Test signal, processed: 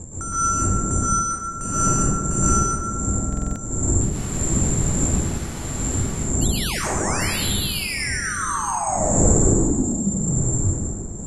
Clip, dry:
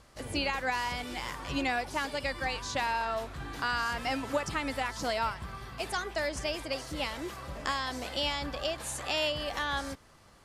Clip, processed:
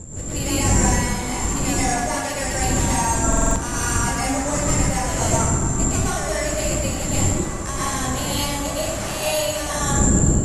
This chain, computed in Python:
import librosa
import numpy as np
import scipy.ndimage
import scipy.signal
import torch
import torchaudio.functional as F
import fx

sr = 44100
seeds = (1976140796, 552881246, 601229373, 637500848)

y = fx.dmg_wind(x, sr, seeds[0], corner_hz=180.0, level_db=-32.0)
y = y + 10.0 ** (-22.0 / 20.0) * np.pad(y, (int(908 * sr / 1000.0), 0))[:len(y)]
y = (np.kron(y[::6], np.eye(6)[0]) * 6)[:len(y)]
y = 10.0 ** (-4.0 / 20.0) * np.tanh(y / 10.0 ** (-4.0 / 20.0))
y = fx.high_shelf(y, sr, hz=3300.0, db=-10.0)
y = fx.rev_plate(y, sr, seeds[1], rt60_s=1.6, hf_ratio=0.5, predelay_ms=105, drr_db=-9.0)
y = fx.dynamic_eq(y, sr, hz=1400.0, q=6.4, threshold_db=-39.0, ratio=4.0, max_db=-4)
y = fx.brickwall_lowpass(y, sr, high_hz=12000.0)
y = fx.buffer_glitch(y, sr, at_s=(3.28,), block=2048, repeats=5)